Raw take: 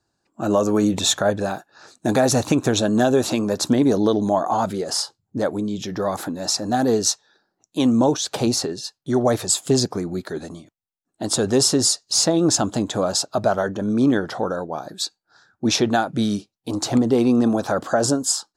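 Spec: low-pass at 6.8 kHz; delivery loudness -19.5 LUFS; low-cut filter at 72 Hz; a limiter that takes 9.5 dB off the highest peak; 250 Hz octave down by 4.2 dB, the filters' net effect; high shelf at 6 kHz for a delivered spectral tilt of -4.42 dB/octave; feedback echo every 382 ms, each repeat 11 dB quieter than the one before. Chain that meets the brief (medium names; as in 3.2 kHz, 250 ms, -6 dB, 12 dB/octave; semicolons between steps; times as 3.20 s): high-pass 72 Hz; low-pass 6.8 kHz; peaking EQ 250 Hz -5 dB; treble shelf 6 kHz -9 dB; peak limiter -16.5 dBFS; feedback delay 382 ms, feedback 28%, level -11 dB; trim +7.5 dB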